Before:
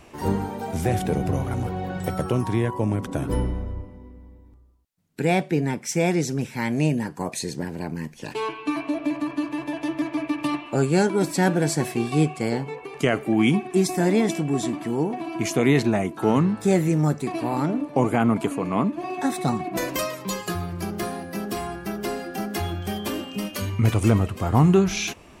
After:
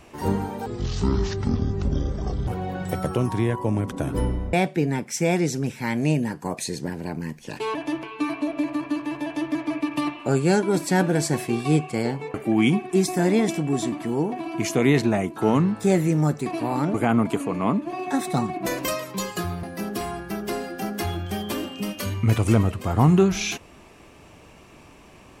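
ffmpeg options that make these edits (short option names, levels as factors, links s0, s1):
-filter_complex "[0:a]asplit=9[s0][s1][s2][s3][s4][s5][s6][s7][s8];[s0]atrim=end=0.664[s9];[s1]atrim=start=0.66:end=1.62,asetpts=PTS-STARTPTS,asetrate=23373,aresample=44100,atrim=end_sample=79879,asetpts=PTS-STARTPTS[s10];[s2]atrim=start=1.616:end=3.682[s11];[s3]atrim=start=5.278:end=8.502[s12];[s4]atrim=start=9.708:end=9.992[s13];[s5]atrim=start=8.498:end=12.812[s14];[s6]atrim=start=13.148:end=17.752[s15];[s7]atrim=start=18.048:end=20.742[s16];[s8]atrim=start=21.188[s17];[s9][s10]acrossfade=d=0.004:c1=hsin:c2=hsin[s18];[s18][s11]acrossfade=d=0.004:c1=hsin:c2=hsin[s19];[s19][s12]acrossfade=d=0.004:c1=hsin:c2=hsin[s20];[s20][s13]acrossfade=d=0.004:c1=hsin:c2=hsin[s21];[s21][s14]acrossfade=d=0.004:c1=hsin:c2=hsin[s22];[s22][s15]acrossfade=d=0.004:c1=hsin:c2=hsin[s23];[s23][s16]acrossfade=d=0.004:c1=hsin:c2=hsin[s24];[s24][s17]acrossfade=d=0.004:c1=hsin:c2=hsin"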